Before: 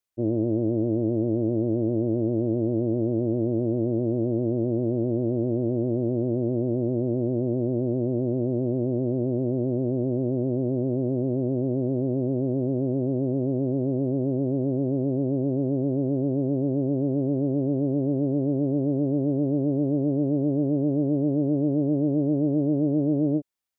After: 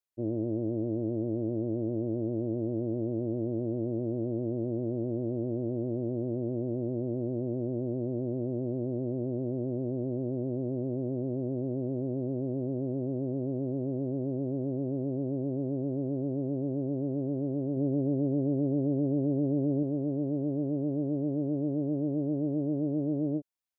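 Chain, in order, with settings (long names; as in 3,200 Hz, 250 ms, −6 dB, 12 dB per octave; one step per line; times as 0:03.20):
0:17.76–0:19.83: comb filter 7.2 ms, depth 47%
level −7 dB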